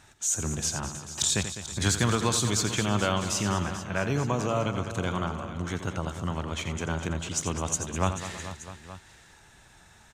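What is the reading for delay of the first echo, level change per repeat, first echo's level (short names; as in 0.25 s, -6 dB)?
86 ms, no steady repeat, -10.5 dB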